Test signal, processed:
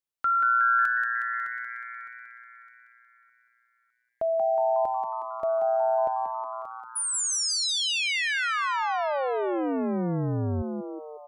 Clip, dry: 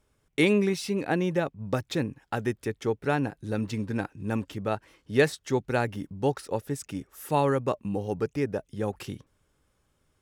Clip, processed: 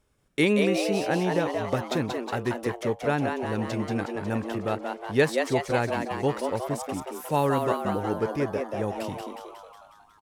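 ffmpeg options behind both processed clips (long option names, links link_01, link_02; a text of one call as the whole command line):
ffmpeg -i in.wav -filter_complex "[0:a]asplit=9[link_01][link_02][link_03][link_04][link_05][link_06][link_07][link_08][link_09];[link_02]adelay=182,afreqshift=120,volume=-5dB[link_10];[link_03]adelay=364,afreqshift=240,volume=-9.4dB[link_11];[link_04]adelay=546,afreqshift=360,volume=-13.9dB[link_12];[link_05]adelay=728,afreqshift=480,volume=-18.3dB[link_13];[link_06]adelay=910,afreqshift=600,volume=-22.7dB[link_14];[link_07]adelay=1092,afreqshift=720,volume=-27.2dB[link_15];[link_08]adelay=1274,afreqshift=840,volume=-31.6dB[link_16];[link_09]adelay=1456,afreqshift=960,volume=-36.1dB[link_17];[link_01][link_10][link_11][link_12][link_13][link_14][link_15][link_16][link_17]amix=inputs=9:normalize=0" out.wav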